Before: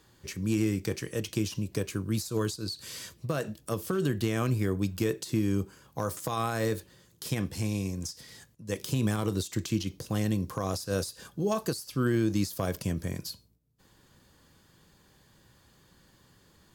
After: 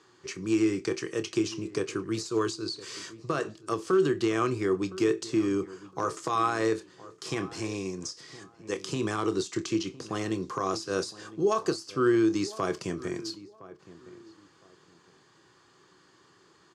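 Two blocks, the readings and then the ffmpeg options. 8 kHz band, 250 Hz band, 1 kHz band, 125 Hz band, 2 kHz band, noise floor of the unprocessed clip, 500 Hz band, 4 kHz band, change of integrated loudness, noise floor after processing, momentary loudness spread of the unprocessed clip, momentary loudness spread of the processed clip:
-1.0 dB, +1.5 dB, +6.0 dB, -8.0 dB, +3.0 dB, -63 dBFS, +4.5 dB, +1.0 dB, +1.5 dB, -61 dBFS, 9 LU, 13 LU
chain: -filter_complex "[0:a]highpass=200,equalizer=f=220:t=q:w=4:g=-10,equalizer=f=370:t=q:w=4:g=8,equalizer=f=560:t=q:w=4:g=-6,equalizer=f=1200:t=q:w=4:g=7,equalizer=f=3600:t=q:w=4:g=-3,lowpass=f=7400:w=0.5412,lowpass=f=7400:w=1.3066,asplit=2[s0][s1];[s1]adelay=27,volume=0.211[s2];[s0][s2]amix=inputs=2:normalize=0,asplit=2[s3][s4];[s4]adelay=1013,lowpass=f=1400:p=1,volume=0.141,asplit=2[s5][s6];[s6]adelay=1013,lowpass=f=1400:p=1,volume=0.26[s7];[s3][s5][s7]amix=inputs=3:normalize=0,volume=1.26"

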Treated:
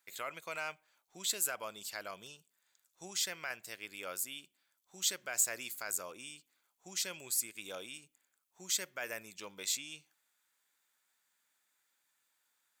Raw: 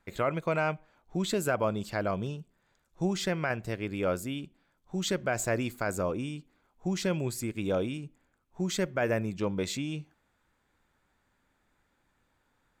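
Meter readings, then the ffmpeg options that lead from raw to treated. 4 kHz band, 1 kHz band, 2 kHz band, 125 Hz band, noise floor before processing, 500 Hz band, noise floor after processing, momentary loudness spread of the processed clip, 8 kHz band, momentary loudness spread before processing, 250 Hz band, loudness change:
0.0 dB, -11.5 dB, -6.5 dB, -28.0 dB, -74 dBFS, -17.0 dB, -81 dBFS, 16 LU, +5.5 dB, 10 LU, -23.5 dB, -5.0 dB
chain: -af "aderivative,volume=1.88"

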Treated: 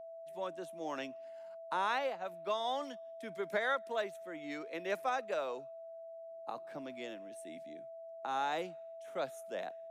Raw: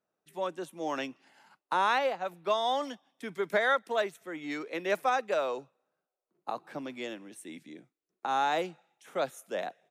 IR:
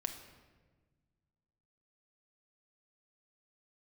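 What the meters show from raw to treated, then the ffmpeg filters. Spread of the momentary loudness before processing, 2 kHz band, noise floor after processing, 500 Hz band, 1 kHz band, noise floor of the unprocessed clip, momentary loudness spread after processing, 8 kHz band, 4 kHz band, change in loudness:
15 LU, -7.0 dB, -49 dBFS, -6.0 dB, -7.0 dB, under -85 dBFS, 15 LU, -7.0 dB, -7.0 dB, -7.5 dB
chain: -af "aeval=exprs='val(0)+0.0112*sin(2*PI*660*n/s)':c=same,volume=0.447"

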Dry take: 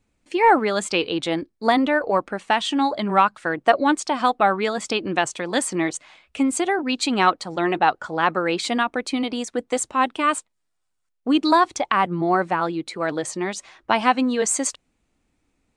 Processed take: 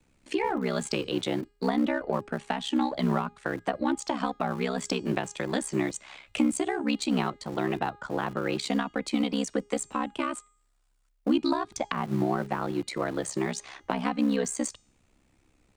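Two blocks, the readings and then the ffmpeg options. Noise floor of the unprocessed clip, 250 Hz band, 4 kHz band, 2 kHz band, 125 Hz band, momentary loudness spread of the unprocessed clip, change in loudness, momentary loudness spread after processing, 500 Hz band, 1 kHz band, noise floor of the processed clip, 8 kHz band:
-74 dBFS, -4.0 dB, -8.5 dB, -11.0 dB, 0.0 dB, 8 LU, -8.0 dB, 6 LU, -7.5 dB, -12.5 dB, -69 dBFS, -8.5 dB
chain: -filter_complex "[0:a]acrossover=split=180[s0][s1];[s1]acompressor=threshold=0.02:ratio=5[s2];[s0][s2]amix=inputs=2:normalize=0,aeval=exprs='val(0)*sin(2*PI*33*n/s)':c=same,acrossover=split=120|770[s3][s4][s5];[s3]aeval=exprs='(mod(473*val(0)+1,2)-1)/473':c=same[s6];[s5]acompressor=threshold=0.0126:ratio=6[s7];[s6][s4][s7]amix=inputs=3:normalize=0,bandreject=f=410.7:t=h:w=4,bandreject=f=821.4:t=h:w=4,bandreject=f=1232.1:t=h:w=4,bandreject=f=1642.8:t=h:w=4,bandreject=f=2053.5:t=h:w=4,bandreject=f=2464.2:t=h:w=4,bandreject=f=2874.9:t=h:w=4,bandreject=f=3285.6:t=h:w=4,bandreject=f=3696.3:t=h:w=4,bandreject=f=4107:t=h:w=4,bandreject=f=4517.7:t=h:w=4,bandreject=f=4928.4:t=h:w=4,bandreject=f=5339.1:t=h:w=4,bandreject=f=5749.8:t=h:w=4,bandreject=f=6160.5:t=h:w=4,bandreject=f=6571.2:t=h:w=4,bandreject=f=6981.9:t=h:w=4,bandreject=f=7392.6:t=h:w=4,bandreject=f=7803.3:t=h:w=4,bandreject=f=8214:t=h:w=4,bandreject=f=8624.7:t=h:w=4,asplit=2[s8][s9];[s9]aeval=exprs='sgn(val(0))*max(abs(val(0))-0.00891,0)':c=same,volume=0.266[s10];[s8][s10]amix=inputs=2:normalize=0,volume=2.24"

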